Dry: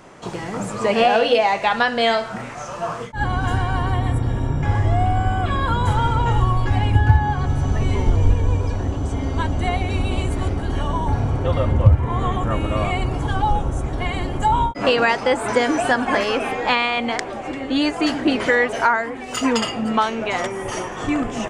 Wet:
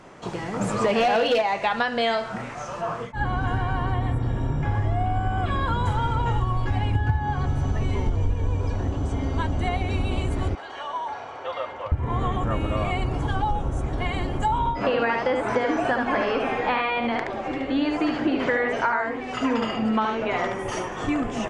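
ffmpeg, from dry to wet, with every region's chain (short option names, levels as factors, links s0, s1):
-filter_complex "[0:a]asettb=1/sr,asplit=3[s0][s1][s2];[s0]atrim=end=0.614[s3];[s1]atrim=start=0.61:end=1.42,asetpts=PTS-STARTPTS,afade=t=in:d=0.004:c=qsin,afade=t=out:st=0.806:d=0.004:c=qsin,acontrast=26,asoftclip=type=hard:threshold=0.376[s4];[s2]atrim=start=1.416[s5];[s3][s4]acrossfade=d=0.004:c1=hsin:c2=qsin[s6];[s6][s5]acrossfade=d=0.004:c1=qsin:c2=hsin,asettb=1/sr,asplit=3[s7][s8][s9];[s7]atrim=end=2.814[s10];[s8]atrim=start=2.81:end=5.38,asetpts=PTS-STARTPTS,afade=t=in:d=0.004:c=qsin,afade=t=out:st=2.566:d=0.004:c=qsin,acrossover=split=3100[s11][s12];[s12]acompressor=threshold=0.00355:ratio=4:attack=1:release=60[s13];[s11][s13]amix=inputs=2:normalize=0,bandreject=f=86.62:t=h:w=4,bandreject=f=173.24:t=h:w=4,bandreject=f=259.86:t=h:w=4,bandreject=f=346.48:t=h:w=4,bandreject=f=433.1:t=h:w=4,bandreject=f=519.72:t=h:w=4,bandreject=f=606.34:t=h:w=4,bandreject=f=692.96:t=h:w=4,bandreject=f=779.58:t=h:w=4,bandreject=f=866.2:t=h:w=4,bandreject=f=952.82:t=h:w=4,bandreject=f=1039.44:t=h:w=4,bandreject=f=1126.06:t=h:w=4,bandreject=f=1212.68:t=h:w=4,bandreject=f=1299.3:t=h:w=4,bandreject=f=1385.92:t=h:w=4,bandreject=f=1472.54:t=h:w=4,bandreject=f=1559.16:t=h:w=4,bandreject=f=1645.78:t=h:w=4,bandreject=f=1732.4:t=h:w=4,bandreject=f=1819.02:t=h:w=4,bandreject=f=1905.64:t=h:w=4,bandreject=f=1992.26:t=h:w=4,bandreject=f=2078.88:t=h:w=4,bandreject=f=2165.5:t=h:w=4,bandreject=f=2252.12:t=h:w=4,bandreject=f=2338.74:t=h:w=4,bandreject=f=2425.36:t=h:w=4,bandreject=f=2511.98:t=h:w=4,bandreject=f=2598.6:t=h:w=4,bandreject=f=2685.22:t=h:w=4[s14];[s9]atrim=start=5.376[s15];[s10][s14]acrossfade=d=0.004:c1=hsin:c2=qsin[s16];[s16][s15]acrossfade=d=0.004:c1=qsin:c2=hsin,asettb=1/sr,asplit=3[s17][s18][s19];[s17]atrim=end=10.554[s20];[s18]atrim=start=10.55:end=11.92,asetpts=PTS-STARTPTS,afade=t=in:d=0.004:c=qsin,afade=t=out:st=1.366:d=0.004:c=qsin,highpass=f=360:p=1,acrossover=split=510 6500:gain=0.0708 1 0.126[s21][s22][s23];[s21][s22][s23]amix=inputs=3:normalize=0[s24];[s19]atrim=start=11.916[s25];[s20][s24]acrossfade=d=0.004:c1=hsin:c2=qsin[s26];[s26][s25]acrossfade=d=0.004:c1=qsin:c2=hsin,asettb=1/sr,asplit=3[s27][s28][s29];[s27]atrim=end=14.584[s30];[s28]atrim=start=14.58:end=20.59,asetpts=PTS-STARTPTS,afade=t=in:d=0.004:c=qsin,afade=t=out:st=6.006:d=0.004:c=qsin,acrossover=split=2500[s31][s32];[s32]acompressor=threshold=0.0178:ratio=4:attack=1:release=60[s33];[s31][s33]amix=inputs=2:normalize=0,lowpass=6000,aecho=1:1:73:0.631,atrim=end_sample=265041[s34];[s29]atrim=start=20.586[s35];[s30][s34]acrossfade=d=0.004:c1=hsin:c2=qsin[s36];[s36][s35]acrossfade=d=0.004:c1=qsin:c2=hsin,highshelf=f=9100:g=-10,acompressor=threshold=0.126:ratio=3,volume=0.794"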